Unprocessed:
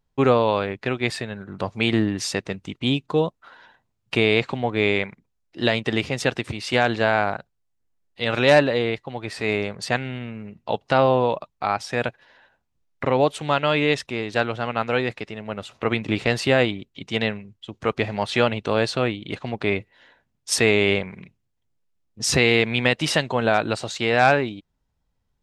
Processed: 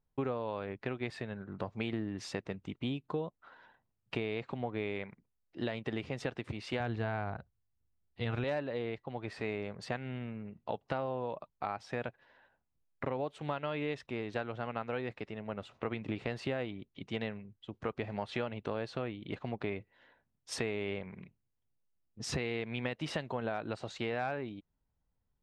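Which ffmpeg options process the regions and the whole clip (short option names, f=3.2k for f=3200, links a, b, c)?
-filter_complex "[0:a]asettb=1/sr,asplit=3[a][b][c];[a]atrim=end=6.804[d];[b]atrim=start=6.8:end=8.44,asetpts=PTS-STARTPTS,afade=t=in:d=0.004:c=qsin,afade=t=out:st=1.636:d=0.004:c=qsin,equalizer=f=73:t=o:w=1.9:g=15,bandreject=f=560:w=9.5[e];[c]atrim=start=8.436[f];[d][e]acrossfade=d=0.004:c1=hsin:c2=qsin[g];[g][f]acrossfade=d=0.004:c1=qsin:c2=hsin,lowpass=f=1.8k:p=1,acompressor=threshold=-25dB:ratio=5,volume=-7.5dB"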